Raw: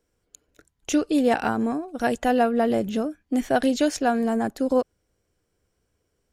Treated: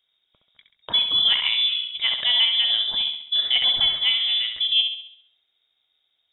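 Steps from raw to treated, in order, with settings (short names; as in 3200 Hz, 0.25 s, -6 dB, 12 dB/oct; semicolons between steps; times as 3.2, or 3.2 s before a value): flutter echo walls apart 11.5 m, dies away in 0.64 s; inverted band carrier 3700 Hz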